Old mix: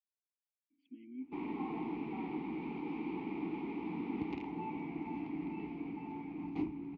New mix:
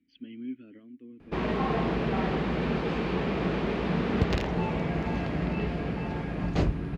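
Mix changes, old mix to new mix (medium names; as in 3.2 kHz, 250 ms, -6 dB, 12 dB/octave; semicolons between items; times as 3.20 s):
speech: entry -0.70 s; master: remove vowel filter u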